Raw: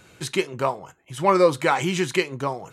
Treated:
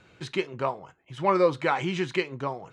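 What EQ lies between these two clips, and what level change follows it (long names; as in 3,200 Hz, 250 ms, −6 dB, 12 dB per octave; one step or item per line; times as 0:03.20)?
low-pass filter 4,100 Hz 12 dB per octave
−4.5 dB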